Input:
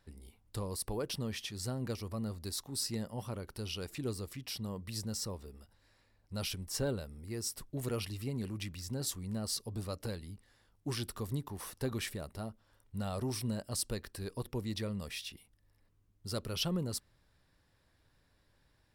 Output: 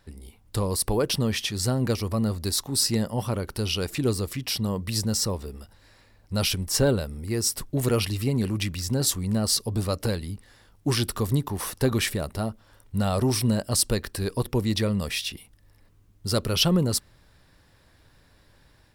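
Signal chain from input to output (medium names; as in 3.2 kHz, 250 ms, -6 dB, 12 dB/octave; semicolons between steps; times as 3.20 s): level rider gain up to 4 dB; trim +9 dB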